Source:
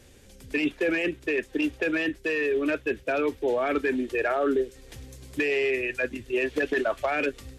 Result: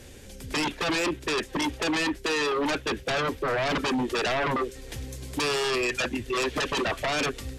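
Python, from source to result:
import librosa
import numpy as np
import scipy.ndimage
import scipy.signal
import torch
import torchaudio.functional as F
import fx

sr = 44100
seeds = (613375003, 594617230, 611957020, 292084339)

y = fx.notch(x, sr, hz=1200.0, q=25.0)
y = fx.fold_sine(y, sr, drive_db=11, ceiling_db=-15.0)
y = F.gain(torch.from_numpy(y), -8.0).numpy()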